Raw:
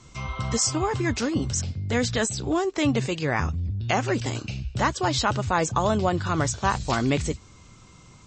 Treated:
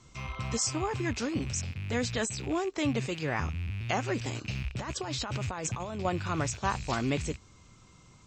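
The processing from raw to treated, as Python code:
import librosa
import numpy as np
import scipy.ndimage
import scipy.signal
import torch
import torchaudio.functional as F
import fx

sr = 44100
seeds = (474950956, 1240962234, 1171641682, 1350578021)

y = fx.rattle_buzz(x, sr, strikes_db=-38.0, level_db=-28.0)
y = fx.over_compress(y, sr, threshold_db=-28.0, ratio=-1.0, at=(4.46, 6.05))
y = y * librosa.db_to_amplitude(-6.5)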